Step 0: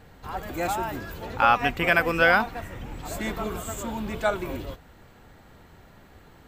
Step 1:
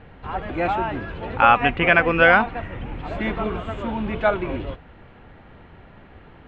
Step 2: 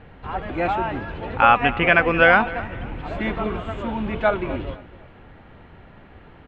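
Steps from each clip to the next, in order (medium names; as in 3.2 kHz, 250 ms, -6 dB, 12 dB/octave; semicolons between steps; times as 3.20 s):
Chebyshev low-pass 2.9 kHz, order 3; trim +5.5 dB
feedback delay 252 ms, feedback 32%, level -18.5 dB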